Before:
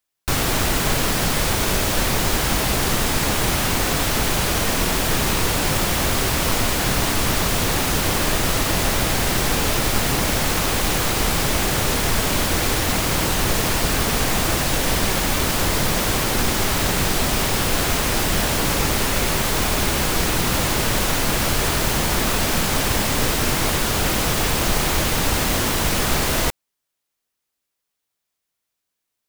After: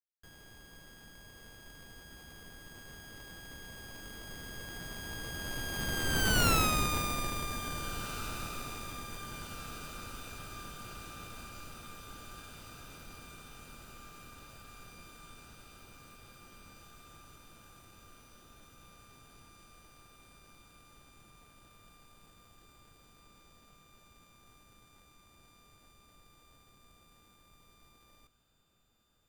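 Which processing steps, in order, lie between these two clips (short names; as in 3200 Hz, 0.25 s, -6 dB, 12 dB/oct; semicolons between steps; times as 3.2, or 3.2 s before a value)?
sample sorter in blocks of 32 samples; Doppler pass-by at 6.47, 54 m/s, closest 13 m; diffused feedback echo 1.795 s, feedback 68%, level -15 dB; gain -5.5 dB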